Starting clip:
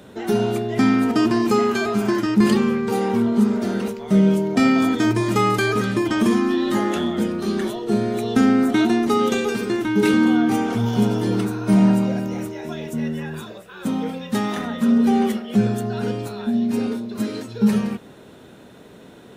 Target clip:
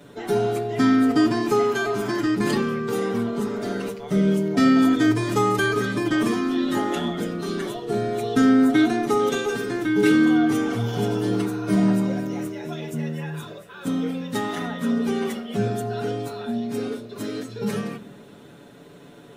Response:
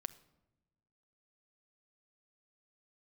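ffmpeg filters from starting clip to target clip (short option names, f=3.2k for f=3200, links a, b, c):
-filter_complex "[0:a]asplit=2[a][b];[1:a]atrim=start_sample=2205,adelay=7[c];[b][c]afir=irnorm=-1:irlink=0,volume=6.5dB[d];[a][d]amix=inputs=2:normalize=0,volume=-7dB"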